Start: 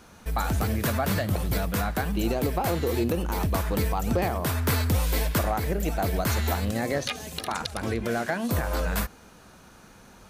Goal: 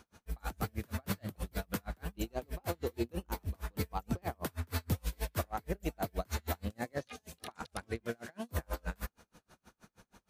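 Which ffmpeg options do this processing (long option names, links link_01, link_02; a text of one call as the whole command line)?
ffmpeg -i in.wav -af "aeval=exprs='val(0)*pow(10,-38*(0.5-0.5*cos(2*PI*6.3*n/s))/20)':channel_layout=same,volume=-5.5dB" out.wav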